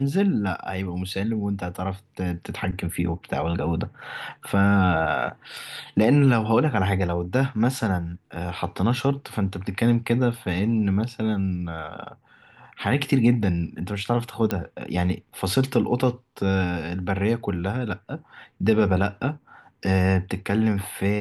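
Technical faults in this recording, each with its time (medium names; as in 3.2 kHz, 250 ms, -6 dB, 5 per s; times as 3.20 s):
14.51 s: pop -11 dBFS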